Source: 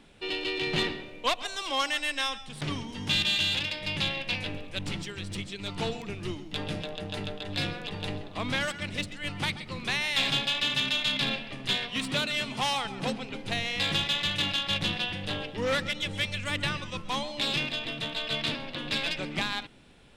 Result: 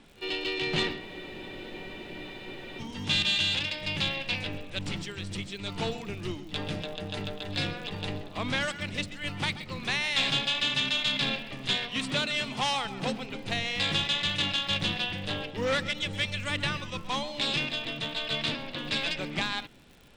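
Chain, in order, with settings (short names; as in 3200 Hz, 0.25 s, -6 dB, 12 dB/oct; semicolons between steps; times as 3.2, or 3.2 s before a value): LPF 9200 Hz 24 dB/oct; reverse echo 52 ms -22 dB; crackle 110/s -44 dBFS; spectral freeze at 1.02, 1.77 s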